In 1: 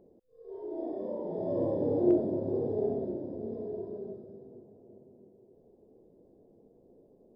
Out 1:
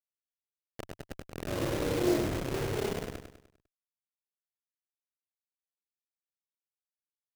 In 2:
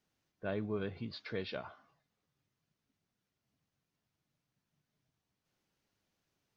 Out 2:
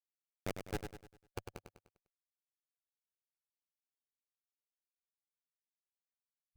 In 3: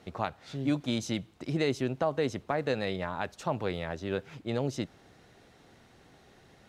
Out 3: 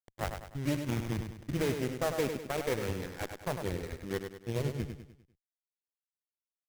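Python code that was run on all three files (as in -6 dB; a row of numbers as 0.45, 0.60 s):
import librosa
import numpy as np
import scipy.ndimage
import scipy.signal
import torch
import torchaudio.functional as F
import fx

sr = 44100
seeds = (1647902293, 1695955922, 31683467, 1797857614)

p1 = fx.delta_hold(x, sr, step_db=-27.0)
p2 = fx.noise_reduce_blind(p1, sr, reduce_db=12)
p3 = fx.graphic_eq_15(p2, sr, hz=(100, 250, 1000), db=(3, -4, -4))
p4 = p3 + fx.echo_feedback(p3, sr, ms=100, feedback_pct=43, wet_db=-7, dry=0)
y = fx.running_max(p4, sr, window=9)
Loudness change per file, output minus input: 0.0, -6.0, -2.5 LU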